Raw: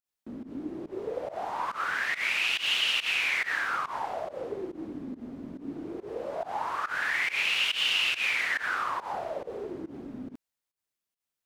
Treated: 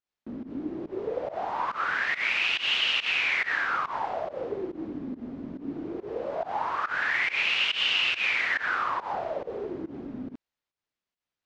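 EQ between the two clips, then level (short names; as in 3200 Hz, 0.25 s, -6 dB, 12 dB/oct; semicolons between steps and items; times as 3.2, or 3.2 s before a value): LPF 7400 Hz 12 dB/oct; air absorption 100 m; +3.0 dB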